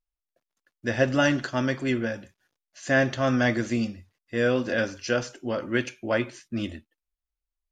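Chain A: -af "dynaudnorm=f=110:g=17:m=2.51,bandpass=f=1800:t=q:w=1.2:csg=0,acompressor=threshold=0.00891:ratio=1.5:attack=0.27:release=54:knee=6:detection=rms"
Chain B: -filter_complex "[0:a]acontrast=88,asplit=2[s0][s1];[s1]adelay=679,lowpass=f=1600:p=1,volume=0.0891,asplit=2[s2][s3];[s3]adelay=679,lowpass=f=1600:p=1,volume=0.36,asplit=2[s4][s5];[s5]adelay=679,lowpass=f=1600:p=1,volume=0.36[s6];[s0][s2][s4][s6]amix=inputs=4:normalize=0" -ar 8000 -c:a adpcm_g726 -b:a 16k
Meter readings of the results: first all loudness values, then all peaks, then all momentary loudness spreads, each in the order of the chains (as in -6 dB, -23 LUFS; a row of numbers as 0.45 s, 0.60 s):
-35.0 LUFS, -19.5 LUFS; -18.5 dBFS, -3.0 dBFS; 11 LU, 11 LU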